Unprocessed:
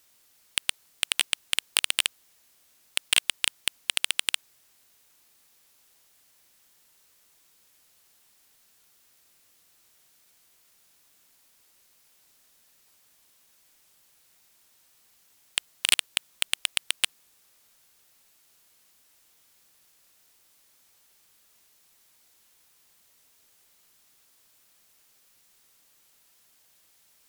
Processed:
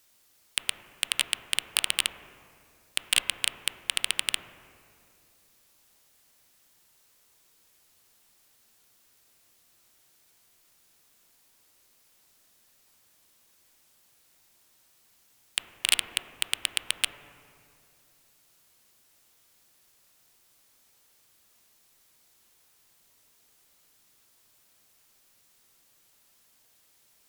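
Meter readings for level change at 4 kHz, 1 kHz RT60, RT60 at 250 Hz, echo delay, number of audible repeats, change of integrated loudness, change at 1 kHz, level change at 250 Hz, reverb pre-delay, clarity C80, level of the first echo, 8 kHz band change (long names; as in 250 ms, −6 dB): −1.5 dB, 2.2 s, 2.7 s, no echo audible, no echo audible, −1.5 dB, −0.5 dB, +1.0 dB, 8 ms, 9.5 dB, no echo audible, −1.5 dB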